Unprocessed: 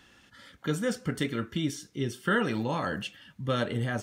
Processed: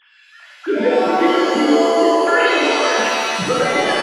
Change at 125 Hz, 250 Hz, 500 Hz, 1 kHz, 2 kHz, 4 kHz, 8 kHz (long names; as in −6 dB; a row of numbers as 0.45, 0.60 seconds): can't be measured, +12.5 dB, +18.0 dB, +19.0 dB, +15.5 dB, +16.5 dB, +15.0 dB